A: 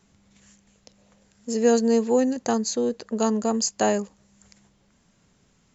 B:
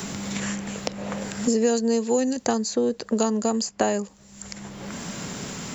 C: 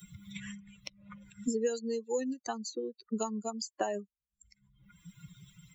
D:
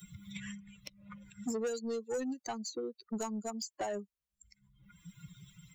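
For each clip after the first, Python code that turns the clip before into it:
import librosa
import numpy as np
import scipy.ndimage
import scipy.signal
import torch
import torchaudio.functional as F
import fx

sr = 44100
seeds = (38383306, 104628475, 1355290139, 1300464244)

y1 = fx.high_shelf(x, sr, hz=6000.0, db=9.0)
y1 = fx.notch(y1, sr, hz=6500.0, q=18.0)
y1 = fx.band_squash(y1, sr, depth_pct=100)
y2 = fx.bin_expand(y1, sr, power=3.0)
y2 = y2 * librosa.db_to_amplitude(-5.5)
y3 = 10.0 ** (-30.0 / 20.0) * np.tanh(y2 / 10.0 ** (-30.0 / 20.0))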